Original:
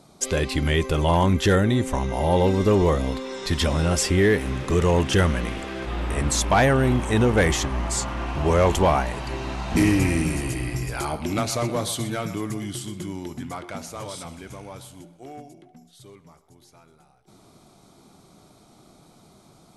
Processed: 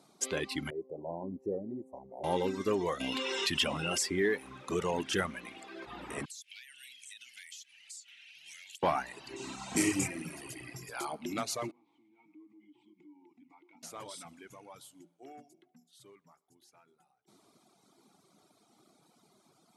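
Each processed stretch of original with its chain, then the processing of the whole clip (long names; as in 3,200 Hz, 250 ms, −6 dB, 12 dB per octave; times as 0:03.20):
0:00.70–0:02.24: inverse Chebyshev low-pass filter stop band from 1,300 Hz + spectral tilt +2.5 dB per octave
0:03.00–0:03.98: parametric band 2,800 Hz +14 dB 0.31 octaves + envelope flattener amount 70%
0:06.25–0:08.83: inverse Chebyshev high-pass filter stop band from 1,200 Hz + downward compressor 8 to 1, threshold −36 dBFS
0:09.36–0:10.08: parametric band 7,800 Hz +13.5 dB 0.72 octaves + notch filter 1,700 Hz, Q 13 + double-tracking delay 31 ms −4.5 dB
0:11.71–0:13.83: linear delta modulator 64 kbit/s, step −45.5 dBFS + formant filter u + downward compressor 2.5 to 1, threshold −46 dBFS
whole clip: reverb reduction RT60 1.8 s; high-pass filter 220 Hz 12 dB per octave; parametric band 560 Hz −3.5 dB 0.57 octaves; level −7.5 dB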